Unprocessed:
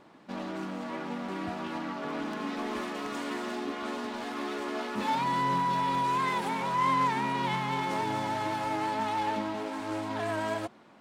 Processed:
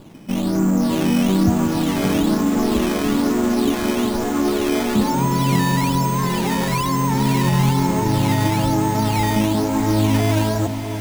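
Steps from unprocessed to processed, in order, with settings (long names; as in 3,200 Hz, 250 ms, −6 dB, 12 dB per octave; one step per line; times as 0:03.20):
brickwall limiter −27.5 dBFS, peak gain reduction 10 dB
low-shelf EQ 380 Hz +7 dB
automatic gain control gain up to 5 dB
RIAA equalisation playback
sample-and-hold swept by an LFO 11×, swing 100% 1.1 Hz
on a send: feedback delay with all-pass diffusion 649 ms, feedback 45%, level −9 dB
on the sum: level +4.5 dB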